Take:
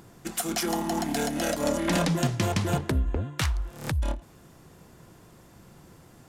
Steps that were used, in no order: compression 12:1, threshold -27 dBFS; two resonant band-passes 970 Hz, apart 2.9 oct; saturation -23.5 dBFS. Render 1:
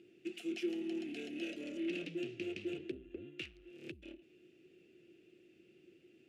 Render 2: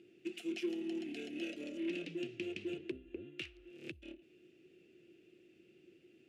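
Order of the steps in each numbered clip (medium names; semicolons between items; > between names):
saturation > compression > two resonant band-passes; compression > two resonant band-passes > saturation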